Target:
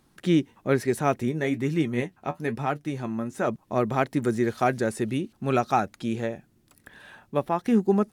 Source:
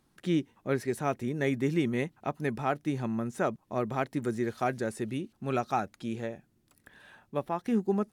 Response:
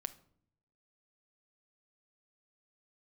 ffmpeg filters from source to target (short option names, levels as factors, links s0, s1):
-filter_complex "[0:a]asplit=3[s0][s1][s2];[s0]afade=t=out:st=1.3:d=0.02[s3];[s1]flanger=delay=6.4:depth=6.1:regen=52:speed=1.1:shape=sinusoidal,afade=t=in:st=1.3:d=0.02,afade=t=out:st=3.47:d=0.02[s4];[s2]afade=t=in:st=3.47:d=0.02[s5];[s3][s4][s5]amix=inputs=3:normalize=0,volume=2.11"